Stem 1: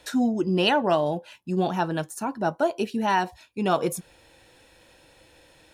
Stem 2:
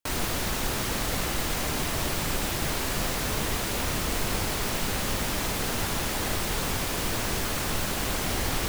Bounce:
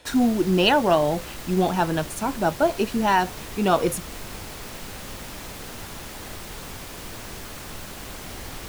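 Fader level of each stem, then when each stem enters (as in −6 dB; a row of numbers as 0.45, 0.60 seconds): +3.0, −8.5 decibels; 0.00, 0.00 seconds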